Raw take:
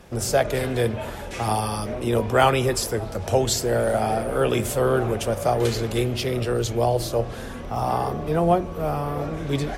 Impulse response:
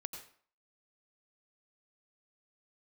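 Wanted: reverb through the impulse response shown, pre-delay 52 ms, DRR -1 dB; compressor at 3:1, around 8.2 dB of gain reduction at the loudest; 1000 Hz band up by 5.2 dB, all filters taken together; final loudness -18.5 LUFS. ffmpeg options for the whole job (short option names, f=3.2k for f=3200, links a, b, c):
-filter_complex "[0:a]equalizer=f=1k:t=o:g=7.5,acompressor=threshold=-20dB:ratio=3,asplit=2[a][b];[1:a]atrim=start_sample=2205,adelay=52[c];[b][c]afir=irnorm=-1:irlink=0,volume=3dB[d];[a][d]amix=inputs=2:normalize=0,volume=3dB"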